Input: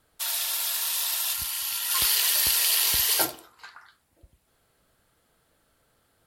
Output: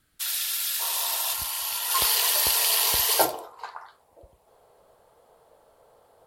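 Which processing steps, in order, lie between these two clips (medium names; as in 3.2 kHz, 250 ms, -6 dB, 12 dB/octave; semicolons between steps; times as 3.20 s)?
high-order bell 660 Hz -10 dB, from 0.79 s +9 dB, from 3.32 s +15.5 dB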